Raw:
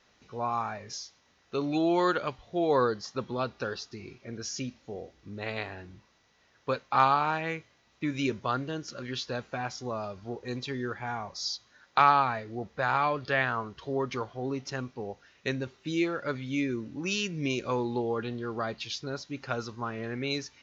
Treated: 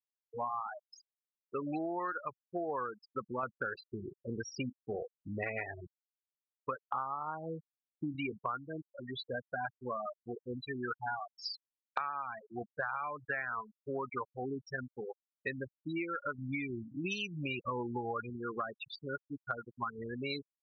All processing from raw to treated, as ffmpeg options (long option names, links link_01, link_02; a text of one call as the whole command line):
ffmpeg -i in.wav -filter_complex "[0:a]asettb=1/sr,asplit=3[link_01][link_02][link_03];[link_01]atrim=end=3.434[link_04];[link_02]atrim=start=3.43:end=5.87,asetpts=PTS-STARTPTS,afade=type=in:duration=0.004:curve=qsin,afade=type=out:start_time=2.436:duration=0.004:curve=qsin,equalizer=frequency=6300:width_type=o:width=0.72:gain=-8.5,asoftclip=type=hard:threshold=-24.5dB,acontrast=75[link_05];[link_03]atrim=start=5.866[link_06];[link_04][link_05]acrossfade=duration=0.004:curve1=hsin:curve2=qsin[link_07];[link_07][link_06]acrossfade=duration=0.004:curve1=qsin:curve2=hsin,asettb=1/sr,asplit=3[link_08][link_09][link_10];[link_08]atrim=end=6.914[link_11];[link_09]atrim=start=6.91:end=8.16,asetpts=PTS-STARTPTS,afade=type=in:duration=0.004:curve=qsin,afade=type=out:start_time=1.246:duration=0.004:curve=qsin,lowpass=frequency=1300:width=0.5412,lowpass=frequency=1300:width=1.3066,lowshelf=frequency=270:gain=5[link_12];[link_10]atrim=start=8.156[link_13];[link_11][link_12]acrossfade=duration=0.004:curve1=hsin:curve2=qsin[link_14];[link_14][link_13]acrossfade=duration=0.004:curve1=qsin:curve2=hsin,asettb=1/sr,asplit=3[link_15][link_16][link_17];[link_15]atrim=end=16.384[link_18];[link_16]atrim=start=16.38:end=18.3,asetpts=PTS-STARTPTS,afade=type=in:duration=0.004:curve=qsin,afade=type=out:start_time=1.916:duration=0.004:curve=qsin,acontrast=58,flanger=delay=0.2:depth=1.4:regen=35:speed=1.4:shape=triangular[link_19];[link_17]atrim=start=18.296[link_20];[link_18][link_19]acrossfade=duration=0.004:curve1=hsin:curve2=qsin[link_21];[link_21][link_20]acrossfade=duration=0.004:curve1=qsin:curve2=hsin,afftfilt=real='re*gte(hypot(re,im),0.0631)':imag='im*gte(hypot(re,im),0.0631)':win_size=1024:overlap=0.75,equalizer=frequency=1400:width=0.74:gain=13,acompressor=threshold=-27dB:ratio=20,volume=-6dB" out.wav